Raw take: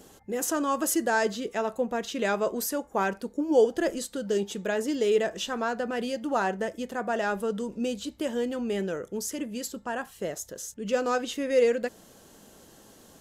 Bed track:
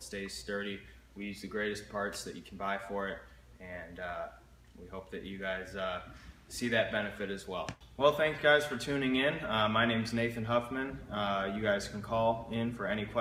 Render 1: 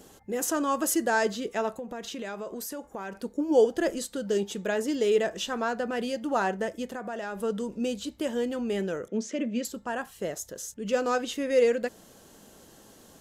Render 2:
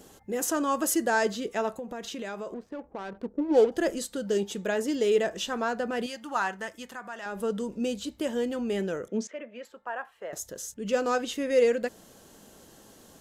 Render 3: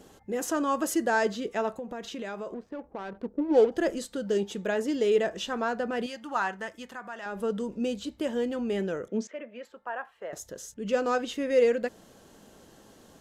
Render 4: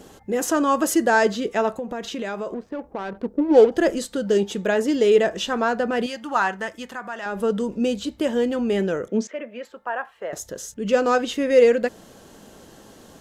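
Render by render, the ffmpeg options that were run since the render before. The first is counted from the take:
-filter_complex "[0:a]asettb=1/sr,asplit=3[a][b][c];[a]atrim=end=1.724[d];[b]atrim=start=1.72:end=3.17,asetpts=PTS-STARTPTS,afade=t=in:d=0.004:c=qsin,afade=t=out:st=1.446:d=0.004:c=qsin,acompressor=threshold=-33dB:ratio=6:attack=3.2:release=140:knee=1:detection=peak[e];[c]atrim=start=3.166[f];[d][e]acrossfade=d=0.004:c1=hsin:c2=qsin[g];[g][f]acrossfade=d=0.004:c1=qsin:c2=hsin,asettb=1/sr,asplit=3[h][i][j];[h]atrim=end=6.884[k];[i]atrim=start=6.88:end=7.4,asetpts=PTS-STARTPTS,afade=t=in:d=0.004:c=qsin,afade=t=out:st=0.516:d=0.004:c=qsin,acompressor=threshold=-32dB:ratio=4:attack=3.2:release=140:knee=1:detection=peak[l];[j]atrim=start=7.396[m];[k][l]acrossfade=d=0.004:c1=hsin:c2=qsin[n];[n][m]acrossfade=d=0.004:c1=qsin:c2=hsin,asettb=1/sr,asplit=3[o][p][q];[o]atrim=end=9.084[r];[p]atrim=start=9.08:end=9.65,asetpts=PTS-STARTPTS,afade=t=in:d=0.004:c=qsin,afade=t=out:st=0.566:d=0.004:c=qsin,highpass=f=170:w=0.5412,highpass=f=170:w=1.3066,equalizer=f=230:t=q:w=4:g=8,equalizer=f=590:t=q:w=4:g=8,equalizer=f=900:t=q:w=4:g=-6,equalizer=f=2.3k:t=q:w=4:g=6,equalizer=f=4.9k:t=q:w=4:g=-7,lowpass=f=6k:w=0.5412,lowpass=f=6k:w=1.3066[s];[q]atrim=start=9.646[t];[r][s]acrossfade=d=0.004:c1=hsin:c2=qsin[u];[u][t]acrossfade=d=0.004:c1=qsin:c2=hsin"
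-filter_complex "[0:a]asettb=1/sr,asplit=3[a][b][c];[a]atrim=end=2.544[d];[b]atrim=start=2.54:end=3.72,asetpts=PTS-STARTPTS,afade=t=in:d=0.004:c=qsin,afade=t=out:st=1.176:d=0.004:c=qsin,adynamicsmooth=sensitivity=6.5:basefreq=620[e];[c]atrim=start=3.716[f];[d][e]acrossfade=d=0.004:c1=hsin:c2=qsin[g];[g][f]acrossfade=d=0.004:c1=qsin:c2=hsin,asettb=1/sr,asplit=3[h][i][j];[h]atrim=end=6.064[k];[i]atrim=start=6.06:end=7.26,asetpts=PTS-STARTPTS,afade=t=in:d=0.004:c=qsin,afade=t=out:st=1.196:d=0.004:c=qsin,lowshelf=f=760:t=q:w=1.5:g=-8.5[l];[j]atrim=start=7.256[m];[k][l]acrossfade=d=0.004:c1=hsin:c2=qsin[n];[n][m]acrossfade=d=0.004:c1=qsin:c2=hsin,asettb=1/sr,asplit=3[o][p][q];[o]atrim=end=9.274[r];[p]atrim=start=9.27:end=10.33,asetpts=PTS-STARTPTS,afade=t=in:d=0.004:c=qsin,afade=t=out:st=1.056:d=0.004:c=qsin,acrossover=split=520 2500:gain=0.0708 1 0.0708[s][t][u];[s][t][u]amix=inputs=3:normalize=0[v];[q]atrim=start=10.326[w];[r][v]acrossfade=d=0.004:c1=hsin:c2=qsin[x];[x][w]acrossfade=d=0.004:c1=qsin:c2=hsin"
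-af "highshelf=f=6.3k:g=-9"
-af "volume=7.5dB"

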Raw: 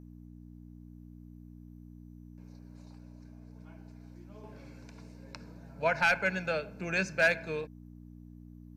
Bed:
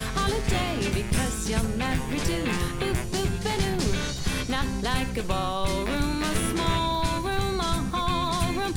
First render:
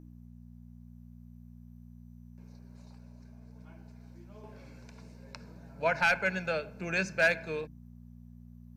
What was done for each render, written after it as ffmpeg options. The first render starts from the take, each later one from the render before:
-af "bandreject=f=50:t=h:w=4,bandreject=f=100:t=h:w=4,bandreject=f=150:t=h:w=4,bandreject=f=200:t=h:w=4,bandreject=f=250:t=h:w=4,bandreject=f=300:t=h:w=4"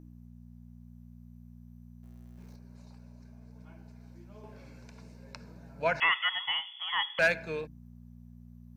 -filter_complex "[0:a]asettb=1/sr,asplit=3[a][b][c];[a]atrim=end=2.034[d];[b]atrim=start=2.03:end=2.56,asetpts=PTS-STARTPTS,afade=t=in:d=0.004:c=qsin,afade=t=out:st=0.526:d=0.004:c=qsin,aeval=exprs='val(0)+0.5*0.00141*sgn(val(0))':c=same[e];[c]atrim=start=2.556[f];[d][e]acrossfade=d=0.004:c1=hsin:c2=qsin[g];[g][f]acrossfade=d=0.004:c1=qsin:c2=hsin,asettb=1/sr,asplit=3[h][i][j];[h]atrim=end=6.004[k];[i]atrim=start=6:end=7.19,asetpts=PTS-STARTPTS,afade=t=in:d=0.004:c=qsin,afade=t=out:st=1.186:d=0.004:c=qsin,lowpass=f=3k:t=q:w=0.5098,lowpass=f=3k:t=q:w=0.6013,lowpass=f=3k:t=q:w=0.9,lowpass=f=3k:t=q:w=2.563,afreqshift=-3500[l];[j]atrim=start=7.186[m];[k][l]acrossfade=d=0.004:c1=hsin:c2=qsin[n];[n][m]acrossfade=d=0.004:c1=qsin:c2=hsin"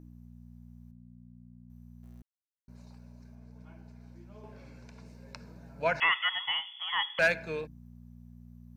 -filter_complex "[0:a]asettb=1/sr,asplit=3[a][b][c];[a]atrim=end=0.914[d];[b]atrim=start=0.91:end=1.7,asetpts=PTS-STARTPTS,afade=t=in:d=0.004:c=qsin,afade=t=out:st=0.786:d=0.004:c=qsin,bandpass=f=200:t=q:w=0.62[e];[c]atrim=start=1.696[f];[d][e]acrossfade=d=0.004:c1=hsin:c2=qsin[g];[g][f]acrossfade=d=0.004:c1=qsin:c2=hsin,asettb=1/sr,asplit=3[h][i][j];[h]atrim=end=3.354[k];[i]atrim=start=3.35:end=5.06,asetpts=PTS-STARTPTS,afade=t=in:d=0.004:c=qsin,afade=t=out:st=1.706:d=0.004:c=qsin,highshelf=f=7.6k:g=-5.5[l];[j]atrim=start=5.056[m];[k][l]acrossfade=d=0.004:c1=hsin:c2=qsin[n];[n][m]acrossfade=d=0.004:c1=qsin:c2=hsin,asplit=3[o][p][q];[o]atrim=end=2.22,asetpts=PTS-STARTPTS,afade=t=out:st=2.216:d=0.004:c=hsin[r];[p]atrim=start=2.22:end=2.68,asetpts=PTS-STARTPTS,volume=0[s];[q]atrim=start=2.68,asetpts=PTS-STARTPTS,afade=t=in:d=0.004:c=hsin[t];[r][s][t]concat=n=3:v=0:a=1"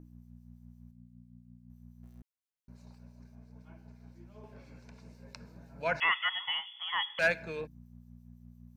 -filter_complex "[0:a]acrossover=split=2500[a][b];[a]aeval=exprs='val(0)*(1-0.5/2+0.5/2*cos(2*PI*5.9*n/s))':c=same[c];[b]aeval=exprs='val(0)*(1-0.5/2-0.5/2*cos(2*PI*5.9*n/s))':c=same[d];[c][d]amix=inputs=2:normalize=0"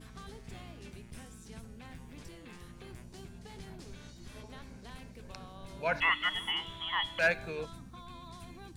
-filter_complex "[1:a]volume=-23.5dB[a];[0:a][a]amix=inputs=2:normalize=0"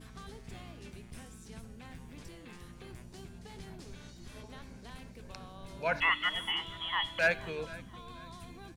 -af "aecho=1:1:478|956|1434:0.1|0.034|0.0116"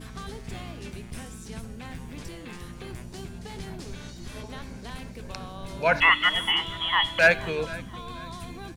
-af "volume=9.5dB"

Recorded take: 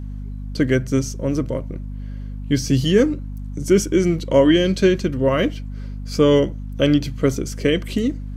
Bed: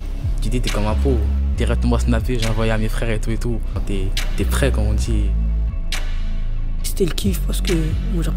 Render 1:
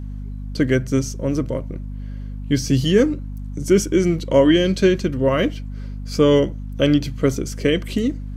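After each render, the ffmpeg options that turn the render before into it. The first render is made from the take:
-af anull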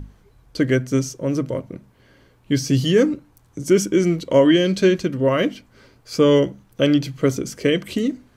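-af "bandreject=f=50:t=h:w=6,bandreject=f=100:t=h:w=6,bandreject=f=150:t=h:w=6,bandreject=f=200:t=h:w=6,bandreject=f=250:t=h:w=6"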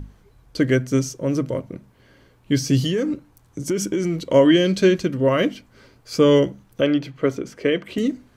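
-filter_complex "[0:a]asettb=1/sr,asplit=3[a][b][c];[a]atrim=end=2.864[d];[b]atrim=start=2.86:end=4.21,asetpts=PTS-STARTPTS,afade=t=in:d=0.004:c=qsin,afade=t=out:st=1.346:d=0.004:c=qsin,acompressor=threshold=-18dB:ratio=6:attack=3.2:release=140:knee=1:detection=peak[e];[c]atrim=start=4.206[f];[d][e]acrossfade=d=0.004:c1=hsin:c2=qsin[g];[g][f]acrossfade=d=0.004:c1=qsin:c2=hsin,asettb=1/sr,asplit=3[h][i][j];[h]atrim=end=6.814[k];[i]atrim=start=6.81:end=7.98,asetpts=PTS-STARTPTS,afade=t=in:d=0.004:c=qsin,afade=t=out:st=1.166:d=0.004:c=qsin,bass=f=250:g=-8,treble=f=4k:g=-14[l];[j]atrim=start=7.976[m];[k][l]acrossfade=d=0.004:c1=hsin:c2=qsin[n];[n][m]acrossfade=d=0.004:c1=qsin:c2=hsin"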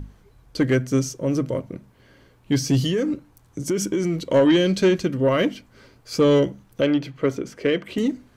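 -af "asoftclip=type=tanh:threshold=-9.5dB"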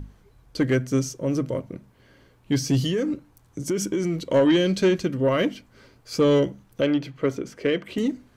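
-af "volume=-2dB"

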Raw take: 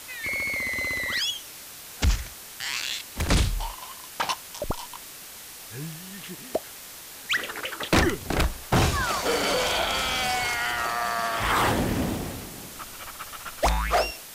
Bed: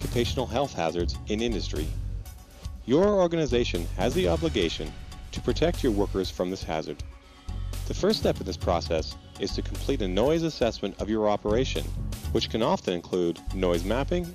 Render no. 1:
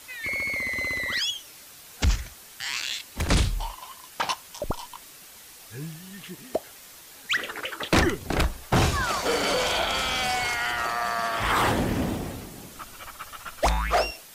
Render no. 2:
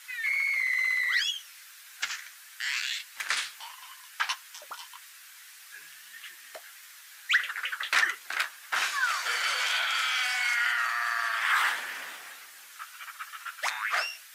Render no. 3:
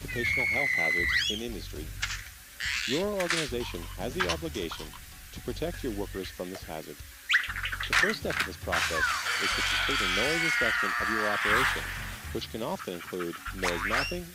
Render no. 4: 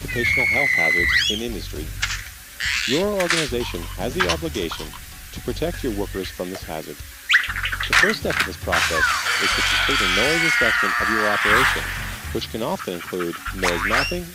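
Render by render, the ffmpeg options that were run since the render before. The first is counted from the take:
-af "afftdn=nr=6:nf=-43"
-af "flanger=delay=7.5:depth=6.9:regen=-39:speed=1.6:shape=triangular,highpass=f=1.6k:t=q:w=2.3"
-filter_complex "[1:a]volume=-9dB[a];[0:a][a]amix=inputs=2:normalize=0"
-af "volume=8.5dB"

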